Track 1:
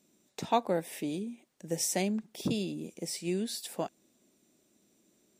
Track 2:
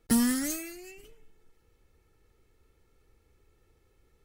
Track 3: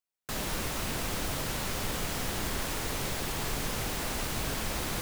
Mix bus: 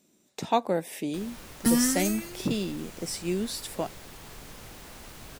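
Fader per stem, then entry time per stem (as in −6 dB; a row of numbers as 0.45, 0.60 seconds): +3.0, +1.5, −12.5 decibels; 0.00, 1.55, 0.85 seconds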